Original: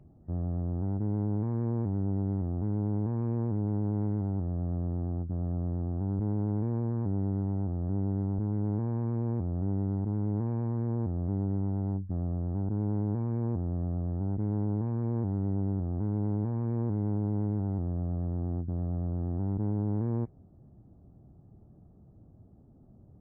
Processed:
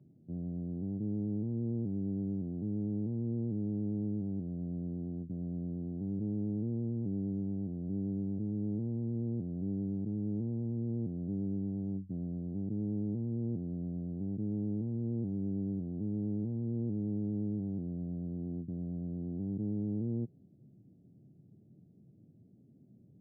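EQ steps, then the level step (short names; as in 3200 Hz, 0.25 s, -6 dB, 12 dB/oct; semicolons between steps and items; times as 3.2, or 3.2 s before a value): Gaussian blur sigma 18 samples; HPF 130 Hz 24 dB/oct; air absorption 230 m; 0.0 dB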